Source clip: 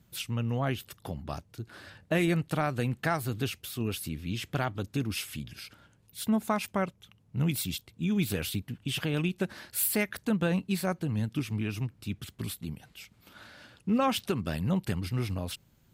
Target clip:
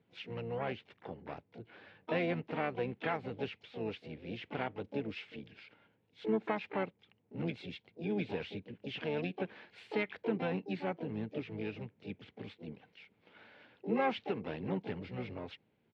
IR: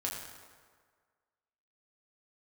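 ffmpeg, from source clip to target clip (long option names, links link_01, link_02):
-filter_complex "[0:a]asplit=4[link_01][link_02][link_03][link_04];[link_02]asetrate=29433,aresample=44100,atempo=1.49831,volume=-16dB[link_05];[link_03]asetrate=66075,aresample=44100,atempo=0.66742,volume=-9dB[link_06];[link_04]asetrate=88200,aresample=44100,atempo=0.5,volume=-10dB[link_07];[link_01][link_05][link_06][link_07]amix=inputs=4:normalize=0,highpass=140,equalizer=frequency=140:width_type=q:width=4:gain=-4,equalizer=frequency=460:width_type=q:width=4:gain=8,equalizer=frequency=820:width_type=q:width=4:gain=4,equalizer=frequency=1200:width_type=q:width=4:gain=-4,equalizer=frequency=2200:width_type=q:width=4:gain=4,lowpass=frequency=3300:width=0.5412,lowpass=frequency=3300:width=1.3066,volume=-8.5dB"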